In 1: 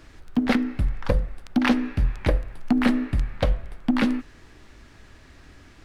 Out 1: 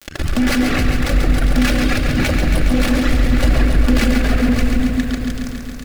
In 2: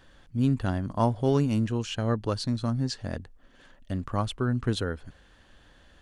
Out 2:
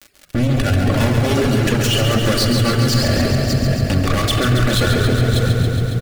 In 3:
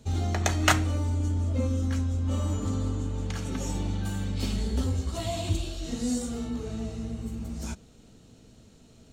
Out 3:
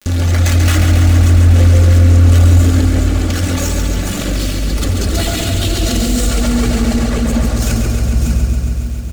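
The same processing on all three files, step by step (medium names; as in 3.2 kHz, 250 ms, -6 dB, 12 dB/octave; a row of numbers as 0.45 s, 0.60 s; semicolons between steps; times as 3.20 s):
dynamic bell 310 Hz, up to -7 dB, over -37 dBFS, Q 0.98; fuzz box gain 40 dB, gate -39 dBFS; crackle 61 per s -38 dBFS; peaking EQ 950 Hz -11 dB 0.36 oct; on a send: delay 594 ms -18.5 dB; on the sum: simulated room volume 3800 m³, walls mixed, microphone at 2.4 m; reverb removal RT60 1.2 s; in parallel at -1 dB: compressor with a negative ratio -25 dBFS, ratio -1; on the sum: loudness maximiser +12 dB; bit-crushed delay 138 ms, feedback 80%, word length 6-bit, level -6 dB; trim -9 dB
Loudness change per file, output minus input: +7.5 LU, +12.0 LU, +16.5 LU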